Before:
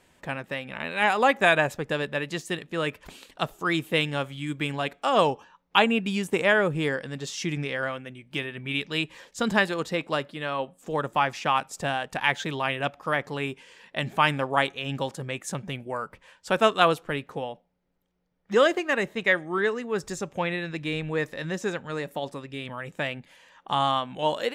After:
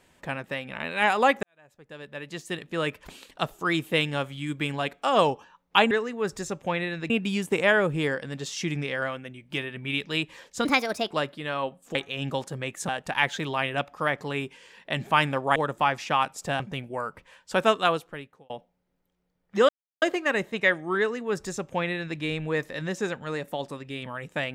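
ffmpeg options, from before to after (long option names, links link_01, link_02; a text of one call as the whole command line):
ffmpeg -i in.wav -filter_complex "[0:a]asplit=12[link_01][link_02][link_03][link_04][link_05][link_06][link_07][link_08][link_09][link_10][link_11][link_12];[link_01]atrim=end=1.43,asetpts=PTS-STARTPTS,afade=type=out:start_time=1.426:duration=0.004:curve=hsin[link_13];[link_02]atrim=start=1.43:end=5.912,asetpts=PTS-STARTPTS,afade=type=in:duration=1.25:curve=qua[link_14];[link_03]atrim=start=19.618:end=20.812[link_15];[link_04]atrim=start=5.908:end=9.464[link_16];[link_05]atrim=start=9.46:end=10.07,asetpts=PTS-STARTPTS,asetrate=58653,aresample=44100,atrim=end_sample=20226,asetpts=PTS-STARTPTS[link_17];[link_06]atrim=start=10.066:end=10.912[link_18];[link_07]atrim=start=14.618:end=15.562[link_19];[link_08]atrim=start=11.948:end=14.622[link_20];[link_09]atrim=start=10.908:end=11.952[link_21];[link_10]atrim=start=15.558:end=17.46,asetpts=PTS-STARTPTS,afade=type=out:start_time=1.002:duration=0.9[link_22];[link_11]atrim=start=17.46:end=18.65,asetpts=PTS-STARTPTS,afade=type=in:duration=0.004:curve=hsin,afade=type=out:start_time=1.186:duration=0.004:curve=hsin,apad=pad_dur=0.33[link_23];[link_12]atrim=start=18.65,asetpts=PTS-STARTPTS,afade=type=in:duration=0.004:curve=hsin[link_24];[link_13][link_14]concat=n=2:v=0:a=1[link_25];[link_25][link_15]acrossfade=duration=0.004:curve1=hsin:curve2=hsin[link_26];[link_26][link_16]acrossfade=duration=0.004:curve1=hsin:curve2=hsin[link_27];[link_27][link_17]acrossfade=duration=0.004:curve1=hsin:curve2=hsin[link_28];[link_28][link_18]acrossfade=duration=0.004:curve1=hsin:curve2=hsin[link_29];[link_29][link_19]acrossfade=duration=0.004:curve1=hsin:curve2=hsin[link_30];[link_30][link_20]acrossfade=duration=0.004:curve1=hsin:curve2=hsin[link_31];[link_31][link_21]acrossfade=duration=0.004:curve1=hsin:curve2=hsin[link_32];[link_22][link_23][link_24]concat=n=3:v=0:a=1[link_33];[link_32][link_33]acrossfade=duration=0.004:curve1=hsin:curve2=hsin" out.wav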